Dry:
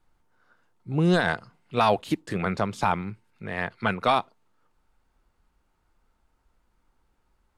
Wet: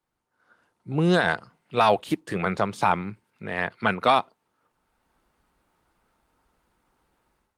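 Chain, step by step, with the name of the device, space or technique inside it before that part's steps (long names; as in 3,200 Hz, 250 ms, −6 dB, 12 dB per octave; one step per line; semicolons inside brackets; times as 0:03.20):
0:00.96–0:02.89: dynamic equaliser 250 Hz, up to −5 dB, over −44 dBFS, Q 5.2
video call (high-pass filter 160 Hz 6 dB per octave; automatic gain control gain up to 13 dB; level −6 dB; Opus 32 kbit/s 48,000 Hz)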